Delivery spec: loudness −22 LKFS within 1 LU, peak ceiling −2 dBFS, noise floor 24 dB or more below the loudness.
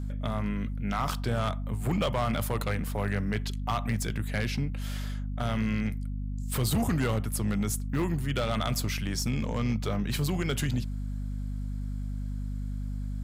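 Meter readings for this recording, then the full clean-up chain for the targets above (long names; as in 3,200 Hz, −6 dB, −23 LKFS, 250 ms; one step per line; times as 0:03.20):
share of clipped samples 1.7%; peaks flattened at −21.5 dBFS; mains hum 50 Hz; hum harmonics up to 250 Hz; level of the hum −31 dBFS; integrated loudness −31.0 LKFS; sample peak −21.5 dBFS; target loudness −22.0 LKFS
→ clipped peaks rebuilt −21.5 dBFS
mains-hum notches 50/100/150/200/250 Hz
level +9 dB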